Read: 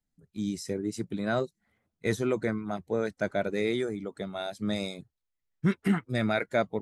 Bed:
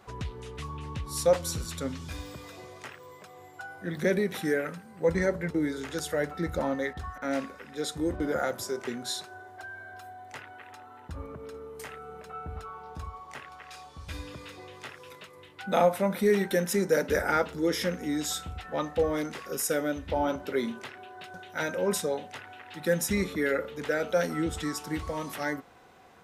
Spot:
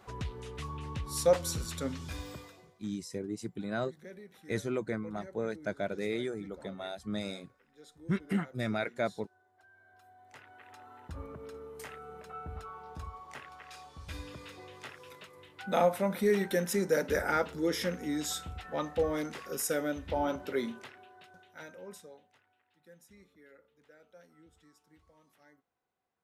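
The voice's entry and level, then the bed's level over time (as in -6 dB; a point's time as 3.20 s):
2.45 s, -5.5 dB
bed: 2.37 s -2 dB
2.82 s -23 dB
9.49 s -23 dB
10.88 s -3.5 dB
20.58 s -3.5 dB
22.80 s -31 dB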